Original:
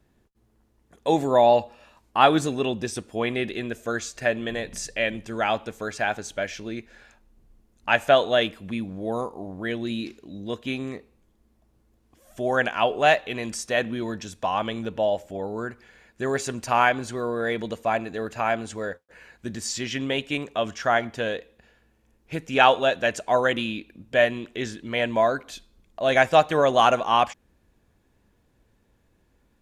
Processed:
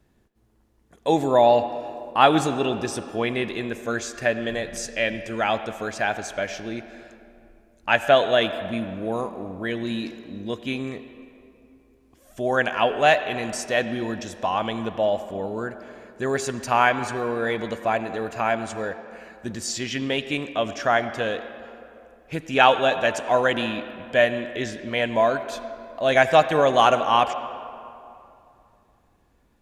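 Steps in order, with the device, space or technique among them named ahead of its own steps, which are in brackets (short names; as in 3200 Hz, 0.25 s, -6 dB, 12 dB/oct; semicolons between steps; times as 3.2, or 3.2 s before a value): filtered reverb send (on a send: HPF 160 Hz 24 dB/oct + LPF 4700 Hz + reverb RT60 2.7 s, pre-delay 72 ms, DRR 11 dB); on the sum: gain +1 dB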